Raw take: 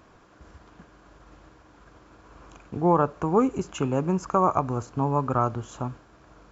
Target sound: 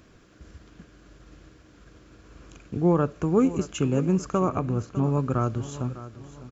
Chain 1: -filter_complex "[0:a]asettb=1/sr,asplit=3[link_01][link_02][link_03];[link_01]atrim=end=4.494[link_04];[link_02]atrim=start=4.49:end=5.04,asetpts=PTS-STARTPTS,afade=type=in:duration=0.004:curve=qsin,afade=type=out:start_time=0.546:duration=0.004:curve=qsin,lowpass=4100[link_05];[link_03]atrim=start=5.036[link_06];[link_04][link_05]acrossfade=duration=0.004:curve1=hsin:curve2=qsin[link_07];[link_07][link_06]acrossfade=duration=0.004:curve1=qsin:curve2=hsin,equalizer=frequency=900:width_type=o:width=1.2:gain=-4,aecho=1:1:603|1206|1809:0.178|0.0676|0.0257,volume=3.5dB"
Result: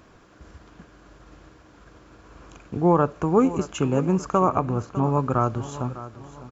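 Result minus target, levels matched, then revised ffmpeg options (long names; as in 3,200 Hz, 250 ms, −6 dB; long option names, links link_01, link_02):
1,000 Hz band +5.5 dB
-filter_complex "[0:a]asettb=1/sr,asplit=3[link_01][link_02][link_03];[link_01]atrim=end=4.494[link_04];[link_02]atrim=start=4.49:end=5.04,asetpts=PTS-STARTPTS,afade=type=in:duration=0.004:curve=qsin,afade=type=out:start_time=0.546:duration=0.004:curve=qsin,lowpass=4100[link_05];[link_03]atrim=start=5.036[link_06];[link_04][link_05]acrossfade=duration=0.004:curve1=hsin:curve2=qsin[link_07];[link_07][link_06]acrossfade=duration=0.004:curve1=qsin:curve2=hsin,equalizer=frequency=900:width_type=o:width=1.2:gain=-14,aecho=1:1:603|1206|1809:0.178|0.0676|0.0257,volume=3.5dB"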